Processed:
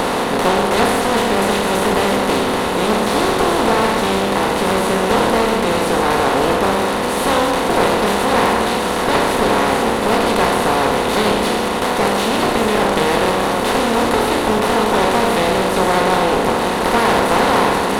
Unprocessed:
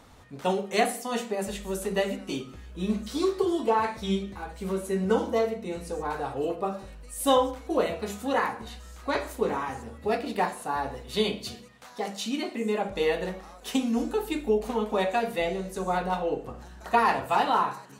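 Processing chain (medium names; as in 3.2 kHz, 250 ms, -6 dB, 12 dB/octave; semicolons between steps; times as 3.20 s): spectral levelling over time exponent 0.2; one-sided clip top -24 dBFS; loudspeaker Doppler distortion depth 0.15 ms; trim +3.5 dB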